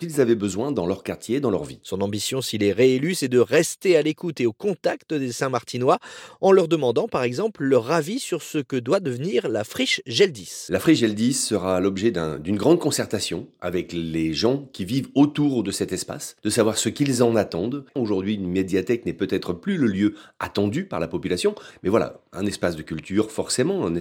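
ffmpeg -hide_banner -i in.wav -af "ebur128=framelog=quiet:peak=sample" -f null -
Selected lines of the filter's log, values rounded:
Integrated loudness:
  I:         -22.8 LUFS
  Threshold: -32.8 LUFS
Loudness range:
  LRA:         3.2 LU
  Threshold: -42.7 LUFS
  LRA low:   -24.6 LUFS
  LRA high:  -21.4 LUFS
Sample peak:
  Peak:       -4.3 dBFS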